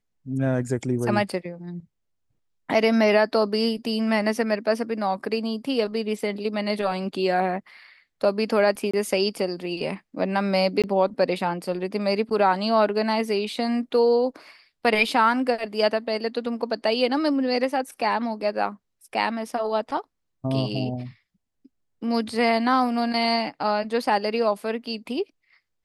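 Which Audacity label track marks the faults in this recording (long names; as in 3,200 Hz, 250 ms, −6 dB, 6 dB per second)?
8.910000	8.940000	drop-out 25 ms
10.820000	10.840000	drop-out 17 ms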